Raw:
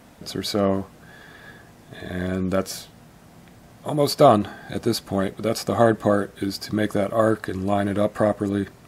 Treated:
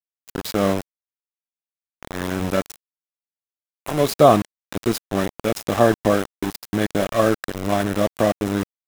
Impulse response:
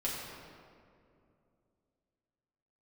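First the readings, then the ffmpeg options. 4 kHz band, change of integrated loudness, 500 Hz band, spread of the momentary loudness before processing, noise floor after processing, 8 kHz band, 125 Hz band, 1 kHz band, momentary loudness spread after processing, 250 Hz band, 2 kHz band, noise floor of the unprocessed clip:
−0.5 dB, +1.5 dB, +1.0 dB, 14 LU, below −85 dBFS, +2.5 dB, +0.5 dB, +1.5 dB, 14 LU, +0.5 dB, +2.5 dB, −49 dBFS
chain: -af "aeval=exprs='val(0)*gte(abs(val(0)),0.0668)':channel_layout=same,bandreject=frequency=4500:width=12,volume=1.5dB"

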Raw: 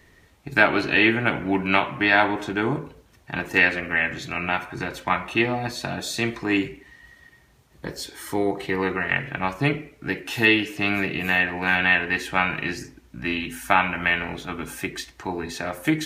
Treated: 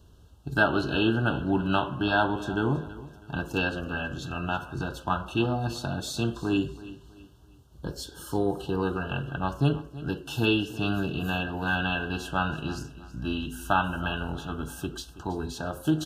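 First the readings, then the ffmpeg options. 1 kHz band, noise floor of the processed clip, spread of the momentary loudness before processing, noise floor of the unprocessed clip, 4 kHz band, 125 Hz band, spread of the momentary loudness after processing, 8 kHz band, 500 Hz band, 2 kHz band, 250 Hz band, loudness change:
−4.5 dB, −53 dBFS, 13 LU, −56 dBFS, −5.0 dB, +2.0 dB, 12 LU, −5.0 dB, −3.5 dB, −10.0 dB, −2.0 dB, −6.0 dB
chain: -filter_complex "[0:a]asuperstop=centerf=2100:order=20:qfactor=2.1,equalizer=frequency=60:width=0.45:gain=11.5,asplit=2[link_01][link_02];[link_02]aecho=0:1:325|650|975:0.141|0.048|0.0163[link_03];[link_01][link_03]amix=inputs=2:normalize=0,volume=-5dB"

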